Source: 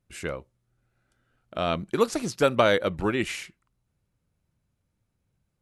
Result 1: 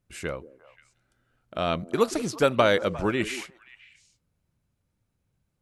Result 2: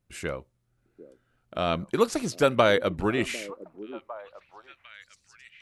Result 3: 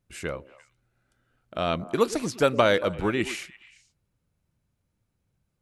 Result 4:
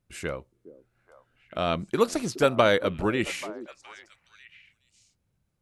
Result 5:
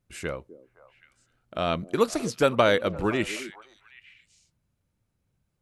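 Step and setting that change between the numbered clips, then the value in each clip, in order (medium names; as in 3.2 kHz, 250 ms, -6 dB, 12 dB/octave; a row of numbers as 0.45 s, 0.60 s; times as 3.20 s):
repeats whose band climbs or falls, time: 176 ms, 752 ms, 114 ms, 418 ms, 258 ms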